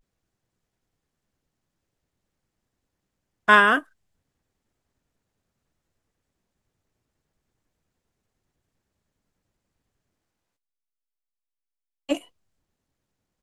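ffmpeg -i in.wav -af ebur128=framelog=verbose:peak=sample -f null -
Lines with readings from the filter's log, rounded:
Integrated loudness:
  I:         -20.2 LUFS
  Threshold: -31.2 LUFS
Loudness range:
  LRA:        14.8 LU
  Threshold: -46.7 LUFS
  LRA low:   -39.5 LUFS
  LRA high:  -24.7 LUFS
Sample peak:
  Peak:       -3.0 dBFS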